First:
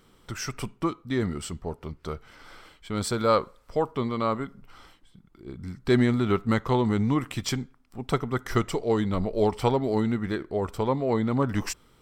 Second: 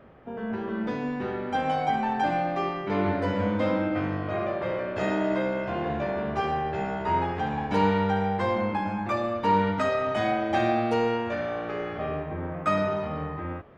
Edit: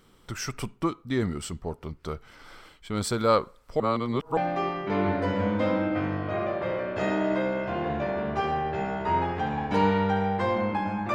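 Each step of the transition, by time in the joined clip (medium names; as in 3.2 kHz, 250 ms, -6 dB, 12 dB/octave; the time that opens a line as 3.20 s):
first
3.80–4.37 s: reverse
4.37 s: go over to second from 2.37 s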